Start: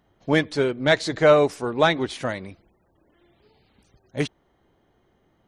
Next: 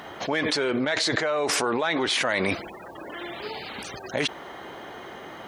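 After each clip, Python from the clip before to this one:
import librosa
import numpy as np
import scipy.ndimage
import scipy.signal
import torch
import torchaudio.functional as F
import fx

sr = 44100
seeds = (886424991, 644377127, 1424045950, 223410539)

y = fx.highpass(x, sr, hz=1400.0, slope=6)
y = fx.high_shelf(y, sr, hz=3400.0, db=-11.0)
y = fx.env_flatten(y, sr, amount_pct=100)
y = y * librosa.db_to_amplitude(-5.0)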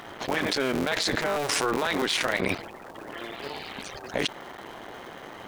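y = fx.cycle_switch(x, sr, every=3, mode='muted')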